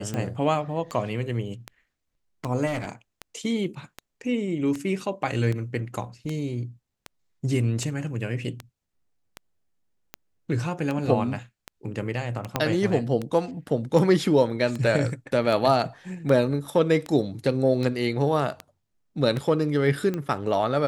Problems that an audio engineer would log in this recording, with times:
tick 78 rpm -17 dBFS
2.66–2.92 s: clipped -24.5 dBFS
12.56 s: pop -8 dBFS

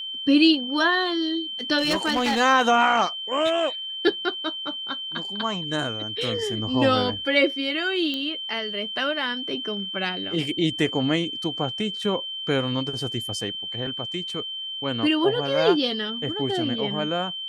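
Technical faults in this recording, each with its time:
whine 3.1 kHz -30 dBFS
1.78–2.41 s: clipped -18.5 dBFS
8.14 s: pop -16 dBFS

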